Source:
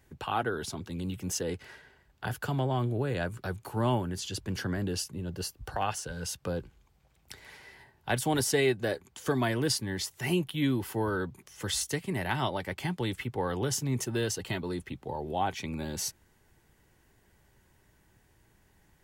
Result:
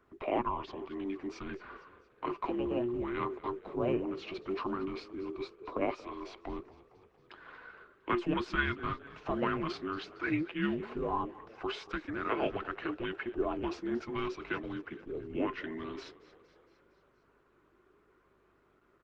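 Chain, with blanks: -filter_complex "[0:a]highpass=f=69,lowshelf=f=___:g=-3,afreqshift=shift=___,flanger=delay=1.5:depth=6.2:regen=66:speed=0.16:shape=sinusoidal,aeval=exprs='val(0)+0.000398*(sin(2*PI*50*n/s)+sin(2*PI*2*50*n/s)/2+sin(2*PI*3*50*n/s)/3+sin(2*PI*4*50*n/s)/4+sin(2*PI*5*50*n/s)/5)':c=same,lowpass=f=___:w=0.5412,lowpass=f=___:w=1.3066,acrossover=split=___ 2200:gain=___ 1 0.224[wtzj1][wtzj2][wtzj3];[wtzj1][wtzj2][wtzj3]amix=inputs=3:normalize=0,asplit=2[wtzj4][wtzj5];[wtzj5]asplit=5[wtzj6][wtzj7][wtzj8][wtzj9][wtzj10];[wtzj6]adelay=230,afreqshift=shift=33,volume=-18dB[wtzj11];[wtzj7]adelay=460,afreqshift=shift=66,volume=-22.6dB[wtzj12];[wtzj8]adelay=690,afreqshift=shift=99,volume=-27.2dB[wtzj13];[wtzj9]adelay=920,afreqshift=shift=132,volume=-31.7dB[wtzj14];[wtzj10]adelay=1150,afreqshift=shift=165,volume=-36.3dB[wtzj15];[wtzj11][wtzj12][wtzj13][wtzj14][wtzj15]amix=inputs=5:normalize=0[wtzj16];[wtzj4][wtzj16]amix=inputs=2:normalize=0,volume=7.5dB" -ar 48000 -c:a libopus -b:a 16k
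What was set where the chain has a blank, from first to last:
93, -480, 4.1k, 4.1k, 320, 0.178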